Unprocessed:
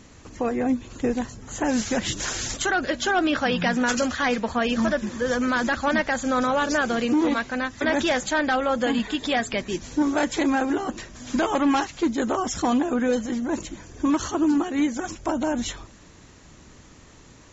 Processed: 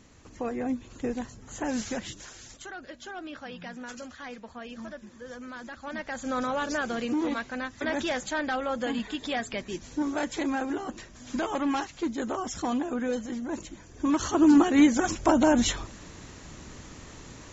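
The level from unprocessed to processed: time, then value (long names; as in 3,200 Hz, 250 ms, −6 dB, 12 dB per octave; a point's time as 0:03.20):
0:01.90 −7 dB
0:02.30 −18 dB
0:05.75 −18 dB
0:06.31 −7 dB
0:13.89 −7 dB
0:14.58 +4 dB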